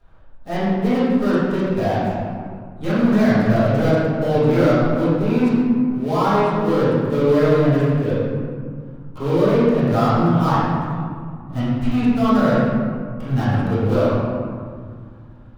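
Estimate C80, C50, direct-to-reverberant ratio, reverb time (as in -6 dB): -1.0 dB, -4.0 dB, -17.0 dB, 2.1 s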